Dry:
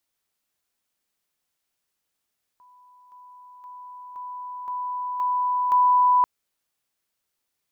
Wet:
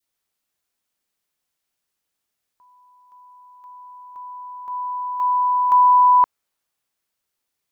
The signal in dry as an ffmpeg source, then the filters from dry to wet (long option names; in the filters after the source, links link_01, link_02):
-f lavfi -i "aevalsrc='pow(10,(-50.5+6*floor(t/0.52))/20)*sin(2*PI*993*t)':duration=3.64:sample_rate=44100"
-af "adynamicequalizer=threshold=0.0282:dfrequency=1000:dqfactor=0.8:tfrequency=1000:tqfactor=0.8:attack=5:release=100:ratio=0.375:range=2.5:mode=boostabove:tftype=bell"